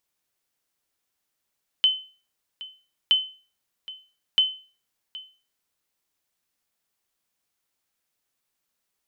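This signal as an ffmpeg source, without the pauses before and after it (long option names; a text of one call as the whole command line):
ffmpeg -f lavfi -i "aevalsrc='0.266*(sin(2*PI*3050*mod(t,1.27))*exp(-6.91*mod(t,1.27)/0.37)+0.112*sin(2*PI*3050*max(mod(t,1.27)-0.77,0))*exp(-6.91*max(mod(t,1.27)-0.77,0)/0.37))':duration=3.81:sample_rate=44100" out.wav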